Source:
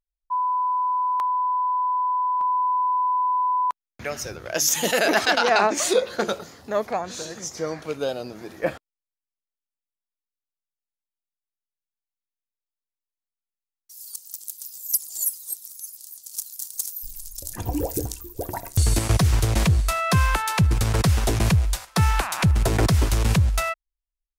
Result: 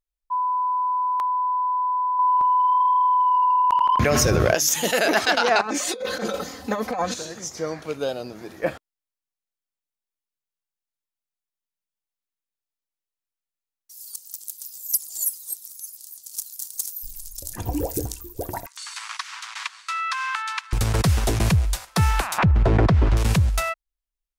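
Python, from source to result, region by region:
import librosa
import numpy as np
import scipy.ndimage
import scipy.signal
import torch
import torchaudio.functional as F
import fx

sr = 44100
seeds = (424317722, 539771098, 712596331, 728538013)

y = fx.chain(x, sr, fx.low_shelf(hz=440.0, db=9.0),
    fx.echo_tape(ms=80, feedback_pct=87, wet_db=-16.0, lp_hz=3400.0, drive_db=13.0, wow_cents=36),
    fx.env_flatten(amount_pct=100), at=(2.19, 4.55))
y = fx.chain(y, sr, fx.comb(ms=3.9, depth=0.96),
    fx.over_compress(threshold_db=-27.0, ratio=-1.0), at=(5.61, 7.14))
y = fx.chain(y, sr, fx.steep_highpass(hz=1000.0, slope=48),
    fx.air_absorb(metres=100.0), at=(18.66, 20.73))
y = fx.chain(y, sr, fx.lowpass(hz=3400.0, slope=12),
    fx.high_shelf(hz=2200.0, db=-10.5),
    fx.env_flatten(amount_pct=70), at=(22.38, 23.17))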